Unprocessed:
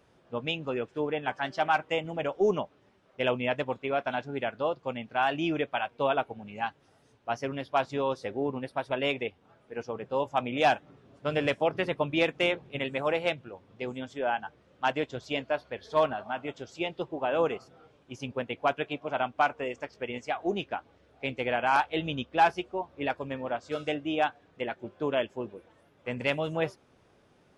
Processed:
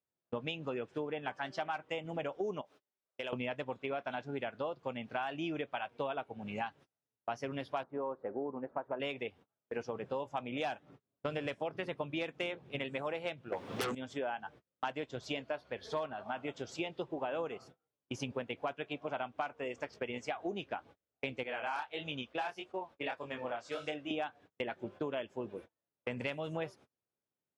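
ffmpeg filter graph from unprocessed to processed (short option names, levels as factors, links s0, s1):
-filter_complex "[0:a]asettb=1/sr,asplit=3[s0][s1][s2];[s0]atrim=end=2.614[s3];[s1]atrim=start=2.61:end=3.33,asetpts=PTS-STARTPTS,afade=t=in:d=0.004:c=qsin,afade=t=out:st=0.716:d=0.004:c=qsin,bass=f=250:g=-11,treble=f=4000:g=9,acompressor=threshold=0.00631:ratio=3:attack=3.2:release=140:knee=1:detection=peak[s4];[s2]atrim=start=3.326[s5];[s3][s4]acrossfade=d=0.004:c1=hsin:c2=qsin[s6];[s6][s5]acrossfade=d=0.004:c1=qsin:c2=hsin,asettb=1/sr,asplit=3[s7][s8][s9];[s7]atrim=end=7.834[s10];[s8]atrim=start=7.83:end=9,asetpts=PTS-STARTPTS,afade=t=in:d=0.004:c=qsin,afade=t=out:st=1.166:d=0.004:c=qsin,lowpass=f=1400:w=0.5412,lowpass=f=1400:w=1.3066,equalizer=f=110:t=o:w=1.2:g=-12[s11];[s9]atrim=start=8.996[s12];[s10][s11]acrossfade=d=0.004:c1=hsin:c2=qsin[s13];[s13][s12]acrossfade=d=0.004:c1=qsin:c2=hsin,asettb=1/sr,asplit=3[s14][s15][s16];[s14]atrim=end=13.524[s17];[s15]atrim=start=13.52:end=13.95,asetpts=PTS-STARTPTS,afade=t=in:d=0.004:c=qsin,afade=t=out:st=0.426:d=0.004:c=qsin,highpass=f=300:p=1,aeval=exprs='0.0794*sin(PI/2*6.31*val(0)/0.0794)':c=same[s18];[s16]atrim=start=13.946[s19];[s17][s18]acrossfade=d=0.004:c1=hsin:c2=qsin[s20];[s20][s19]acrossfade=d=0.004:c1=qsin:c2=hsin,asettb=1/sr,asplit=3[s21][s22][s23];[s21]atrim=end=21.434[s24];[s22]atrim=start=21.43:end=24.11,asetpts=PTS-STARTPTS,afade=t=in:d=0.004:c=qsin,afade=t=out:st=2.676:d=0.004:c=qsin,lowshelf=f=390:g=-10,flanger=delay=19.5:depth=7.5:speed=1.6[s25];[s23]atrim=start=24.106[s26];[s24][s25]acrossfade=d=0.004:c1=hsin:c2=qsin[s27];[s27][s26]acrossfade=d=0.004:c1=qsin:c2=hsin,agate=range=0.0126:threshold=0.00355:ratio=16:detection=peak,highpass=75,acompressor=threshold=0.01:ratio=6,volume=1.68"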